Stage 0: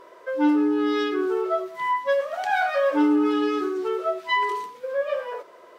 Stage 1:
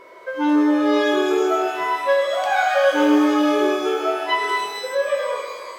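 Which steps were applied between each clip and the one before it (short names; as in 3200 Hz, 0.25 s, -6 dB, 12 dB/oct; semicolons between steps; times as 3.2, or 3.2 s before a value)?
whine 2200 Hz -53 dBFS; shimmer reverb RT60 1.9 s, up +12 st, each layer -8 dB, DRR 2 dB; gain +2 dB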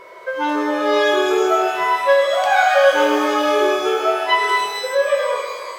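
bell 280 Hz -14.5 dB 0.38 oct; gain +4.5 dB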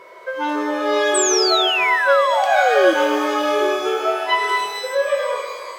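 painted sound fall, 1.14–2.94, 310–8400 Hz -18 dBFS; HPF 110 Hz; gain -2 dB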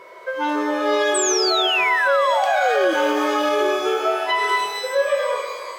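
limiter -10 dBFS, peak gain reduction 6.5 dB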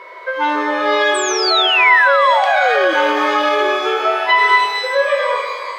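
graphic EQ 250/500/1000/2000/4000 Hz +5/+6/+10/+12/+10 dB; gain -6.5 dB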